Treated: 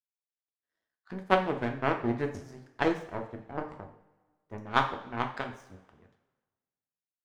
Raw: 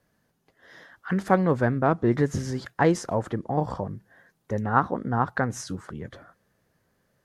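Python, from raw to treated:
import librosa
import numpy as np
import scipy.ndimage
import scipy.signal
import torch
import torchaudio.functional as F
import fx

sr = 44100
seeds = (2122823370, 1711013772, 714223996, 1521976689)

y = fx.power_curve(x, sr, exponent=2.0)
y = fx.rev_double_slope(y, sr, seeds[0], early_s=0.49, late_s=1.5, knee_db=-16, drr_db=3.5)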